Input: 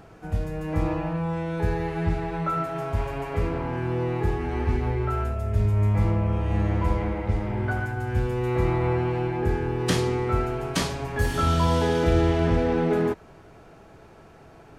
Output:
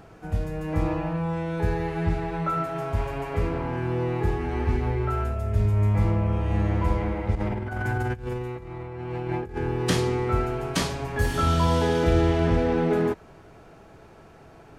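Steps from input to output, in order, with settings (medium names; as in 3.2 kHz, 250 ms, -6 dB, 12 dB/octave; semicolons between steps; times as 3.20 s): 7.35–9.58 s: compressor with a negative ratio -29 dBFS, ratio -0.5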